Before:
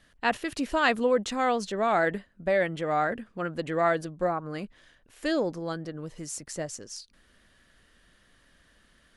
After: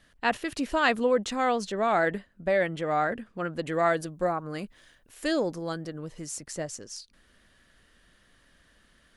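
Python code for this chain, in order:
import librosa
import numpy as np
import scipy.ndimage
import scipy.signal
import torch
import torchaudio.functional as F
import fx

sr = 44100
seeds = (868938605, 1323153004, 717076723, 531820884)

y = fx.high_shelf(x, sr, hz=8100.0, db=11.0, at=(3.66, 5.99))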